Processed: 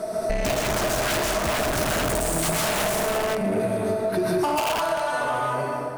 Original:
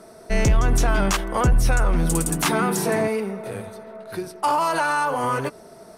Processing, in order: ending faded out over 1.75 s; plate-style reverb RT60 1.2 s, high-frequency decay 0.8×, pre-delay 0.11 s, DRR -5.5 dB; wrapped overs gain 10 dB; notch 540 Hz, Q 12; soft clip -20 dBFS, distortion -10 dB; bell 630 Hz +13.5 dB 0.22 oct; compressor 10:1, threshold -31 dBFS, peak gain reduction 15.5 dB; 3.46–4.63 bell 290 Hz +9 dB 0.51 oct; gain +9 dB

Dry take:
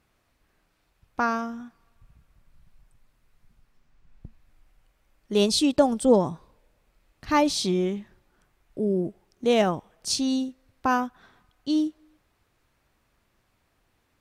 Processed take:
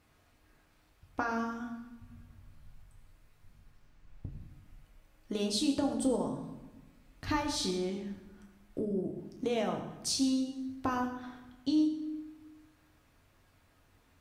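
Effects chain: compressor 4:1, threshold -33 dBFS, peak gain reduction 16.5 dB; reverb RT60 1.0 s, pre-delay 5 ms, DRR 1.5 dB

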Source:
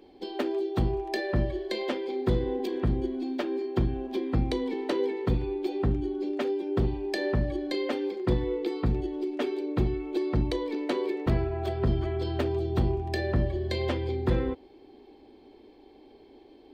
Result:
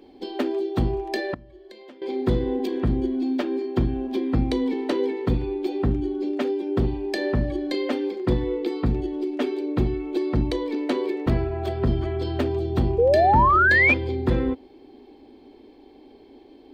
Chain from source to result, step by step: bell 260 Hz +5.5 dB 0.31 oct; 1.34–2.02 compressor 20:1, threshold -45 dBFS, peak gain reduction 25.5 dB; 12.98–13.94 painted sound rise 450–2500 Hz -20 dBFS; gain +3 dB

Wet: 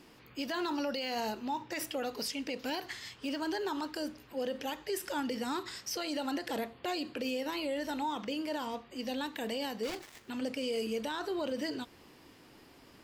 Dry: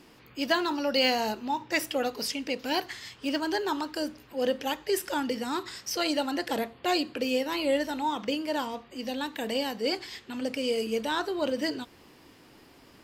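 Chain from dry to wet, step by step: 9.83–10.3 switching dead time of 0.14 ms; limiter -24 dBFS, peak gain reduction 12 dB; gain -2.5 dB

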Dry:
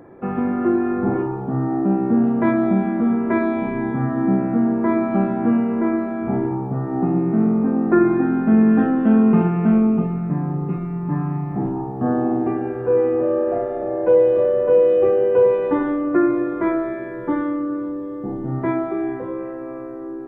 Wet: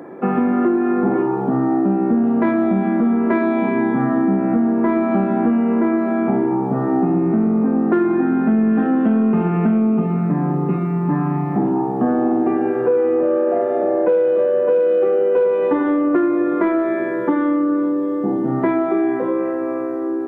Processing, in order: HPF 170 Hz 24 dB/oct; in parallel at -5 dB: soft clip -14.5 dBFS, distortion -14 dB; on the sum: compressor, threshold -19 dBFS, peak gain reduction 10.5 dB; gain +5 dB

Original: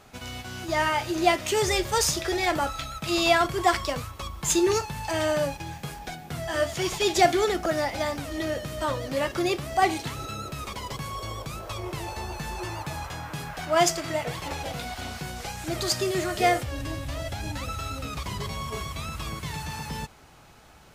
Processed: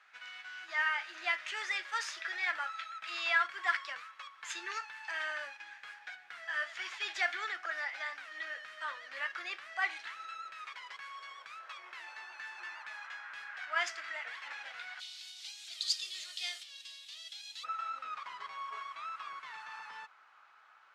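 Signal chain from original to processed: ladder band-pass 1900 Hz, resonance 50%, from 14.99 s 4200 Hz, from 17.63 s 1500 Hz; gain +4 dB

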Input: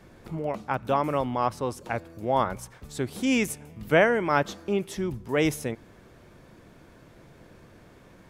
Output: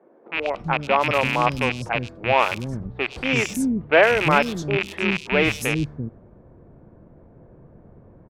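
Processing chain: rattling part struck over -33 dBFS, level -15 dBFS; low-pass opened by the level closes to 560 Hz, open at -20 dBFS; three bands offset in time mids, highs, lows 0.1/0.34 s, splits 310/4000 Hz; gain +5.5 dB

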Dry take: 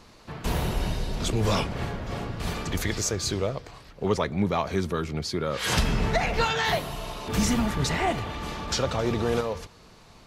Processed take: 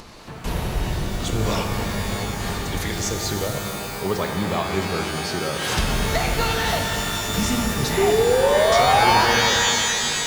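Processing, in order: upward compressor, threshold -34 dBFS; painted sound rise, 7.97–9.24, 380–990 Hz -19 dBFS; shimmer reverb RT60 3.3 s, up +12 st, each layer -2 dB, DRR 3.5 dB

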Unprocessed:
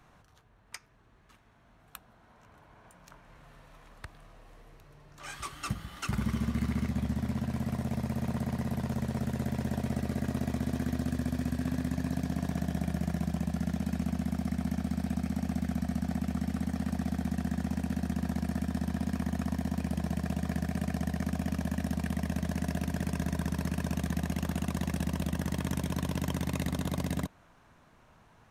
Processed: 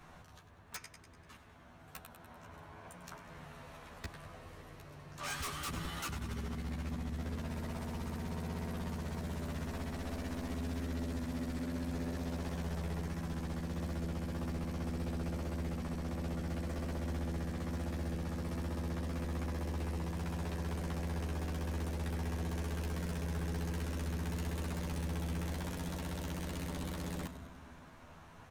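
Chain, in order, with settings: negative-ratio compressor -37 dBFS, ratio -1; split-band echo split 390 Hz, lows 0.206 s, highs 98 ms, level -13.5 dB; wavefolder -33.5 dBFS; doubler 12 ms -2 dB; gain -2 dB

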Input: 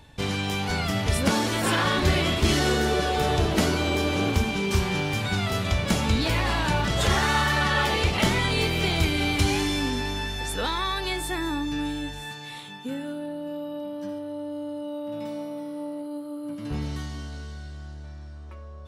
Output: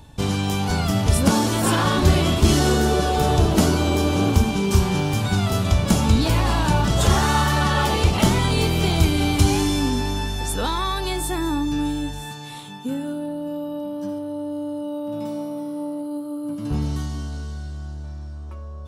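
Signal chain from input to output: ten-band EQ 500 Hz -4 dB, 2000 Hz -10 dB, 4000 Hz -4 dB; gain +7 dB

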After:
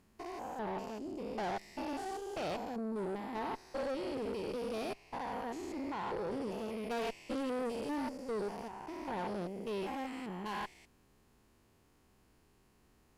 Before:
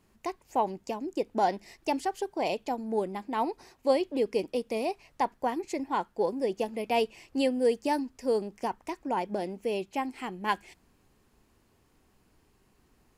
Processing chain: stepped spectrum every 0.2 s; tube stage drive 35 dB, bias 0.5; gain +1.5 dB

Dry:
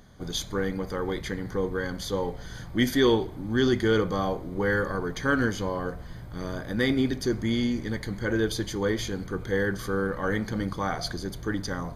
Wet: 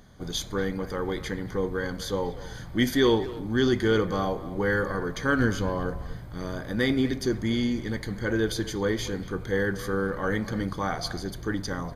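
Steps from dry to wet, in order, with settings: 5.39–6.17 low shelf 180 Hz +6 dB; speakerphone echo 0.24 s, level -15 dB

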